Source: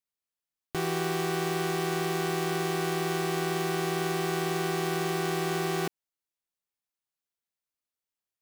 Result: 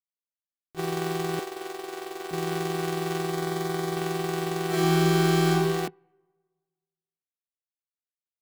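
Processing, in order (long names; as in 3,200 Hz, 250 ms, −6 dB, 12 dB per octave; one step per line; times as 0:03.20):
adaptive Wiener filter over 25 samples
0:01.39–0:02.31: high-pass filter 340 Hz 24 dB per octave
0:03.30–0:03.96: notch filter 2,700 Hz, Q 6.4
0:04.67–0:05.49: thrown reverb, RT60 1.5 s, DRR −6 dB
noise gate −30 dBFS, range −18 dB
level +2 dB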